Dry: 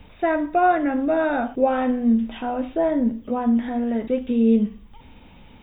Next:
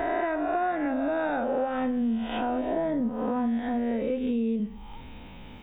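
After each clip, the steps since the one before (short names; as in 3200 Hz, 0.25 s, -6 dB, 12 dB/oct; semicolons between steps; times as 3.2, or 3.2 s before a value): spectral swells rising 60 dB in 1.19 s; compressor, threshold -25 dBFS, peak gain reduction 13 dB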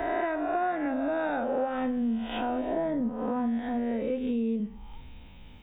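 three-band expander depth 40%; gain -1.5 dB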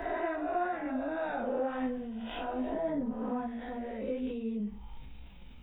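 chorus voices 6, 1.4 Hz, delay 17 ms, depth 3 ms; transient shaper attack -1 dB, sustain +3 dB; gain -2 dB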